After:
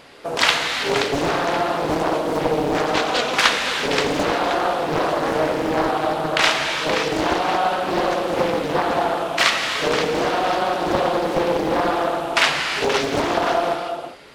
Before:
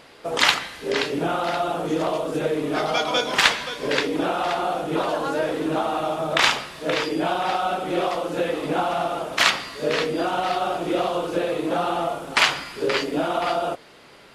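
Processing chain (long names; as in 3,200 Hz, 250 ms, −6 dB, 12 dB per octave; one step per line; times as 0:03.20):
in parallel at −2.5 dB: speech leveller 0.5 s
on the sum: reverb whose tail is shaped and stops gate 420 ms flat, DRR 2.5 dB
highs frequency-modulated by the lows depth 0.97 ms
level −3.5 dB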